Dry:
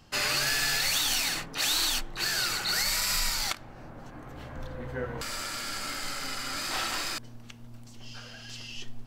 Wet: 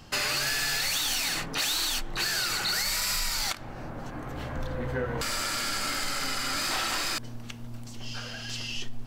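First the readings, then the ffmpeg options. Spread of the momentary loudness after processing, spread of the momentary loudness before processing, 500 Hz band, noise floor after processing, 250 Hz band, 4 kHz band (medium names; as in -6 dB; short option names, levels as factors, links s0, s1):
13 LU, 20 LU, +3.0 dB, -40 dBFS, +4.0 dB, +0.5 dB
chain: -af "acompressor=threshold=0.0251:ratio=4,asoftclip=type=tanh:threshold=0.0473,volume=2.24"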